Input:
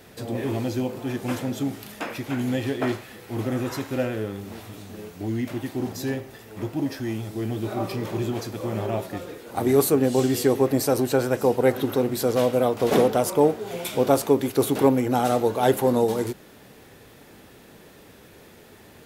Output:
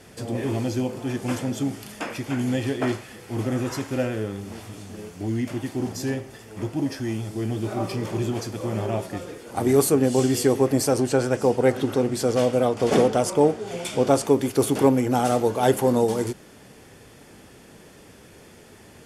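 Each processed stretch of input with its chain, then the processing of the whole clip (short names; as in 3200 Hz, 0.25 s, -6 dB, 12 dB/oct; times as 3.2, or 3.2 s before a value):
10.89–14.25 LPF 9500 Hz + notch 1000 Hz, Q 29
whole clip: LPF 11000 Hz 24 dB/oct; tone controls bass +2 dB, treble +4 dB; notch 3900 Hz, Q 8.2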